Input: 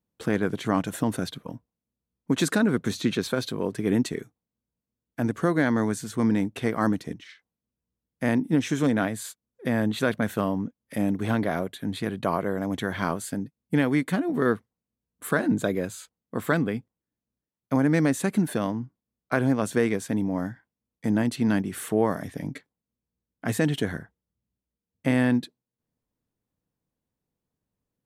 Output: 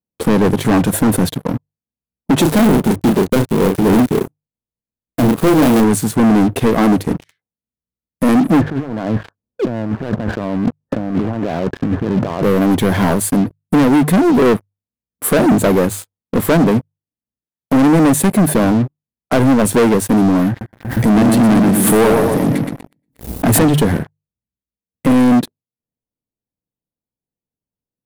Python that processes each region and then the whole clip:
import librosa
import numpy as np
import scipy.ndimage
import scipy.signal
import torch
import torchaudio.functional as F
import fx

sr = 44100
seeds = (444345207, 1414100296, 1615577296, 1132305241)

y = fx.chain(x, sr, fx.dead_time(dead_ms=0.26),
    fx.doubler(ms=32.0, db=-7), at=(2.42, 5.84))
y = fx.chain(y, sr, fx.over_compress(threshold_db=-37.0, ratio=-1.0),
    fx.brickwall_lowpass(high_hz=1800.0), at=(8.61, 12.43))
y = fx.chain(y, sr, fx.echo_feedback(ms=119, feedback_pct=44, wet_db=-6.0),
    fx.pre_swell(db_per_s=93.0), at=(20.49, 23.64))
y = fx.band_shelf(y, sr, hz=3000.0, db=-9.5, octaves=2.9)
y = fx.hum_notches(y, sr, base_hz=50, count=3)
y = fx.leveller(y, sr, passes=5)
y = y * 10.0 ** (2.5 / 20.0)